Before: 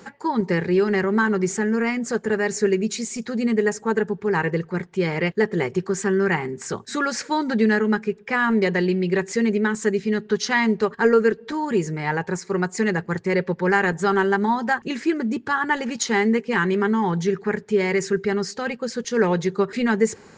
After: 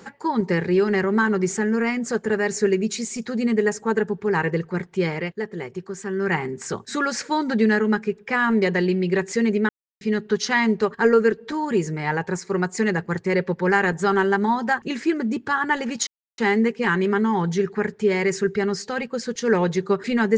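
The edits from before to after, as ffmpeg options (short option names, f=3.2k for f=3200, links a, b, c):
-filter_complex "[0:a]asplit=6[a][b][c][d][e][f];[a]atrim=end=5.44,asetpts=PTS-STARTPTS,afade=t=out:st=5.06:d=0.38:c=qua:silence=0.375837[g];[b]atrim=start=5.44:end=5.97,asetpts=PTS-STARTPTS,volume=-8.5dB[h];[c]atrim=start=5.97:end=9.69,asetpts=PTS-STARTPTS,afade=t=in:d=0.38:c=qua:silence=0.375837,afade=t=out:st=3.716:d=0.004:c=hsin[i];[d]atrim=start=9.69:end=10.01,asetpts=PTS-STARTPTS,volume=0[j];[e]atrim=start=10.01:end=16.07,asetpts=PTS-STARTPTS,afade=t=in:d=0.004:c=hsin,afade=t=out:st=6.056:d=0.004:c=hsin,apad=pad_dur=0.31[k];[f]atrim=start=16.07,asetpts=PTS-STARTPTS,afade=t=in:d=0.004:c=hsin[l];[g][h][i][j][k][l]concat=n=6:v=0:a=1"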